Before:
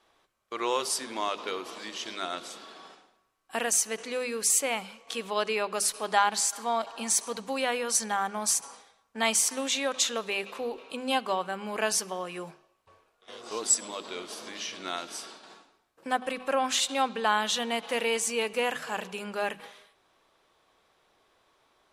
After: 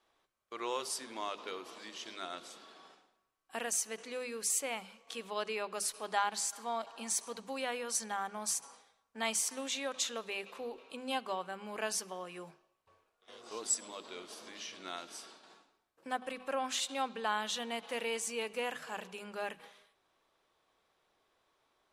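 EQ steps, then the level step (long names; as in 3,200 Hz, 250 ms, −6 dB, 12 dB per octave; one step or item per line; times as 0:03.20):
mains-hum notches 50/100/150/200 Hz
−8.5 dB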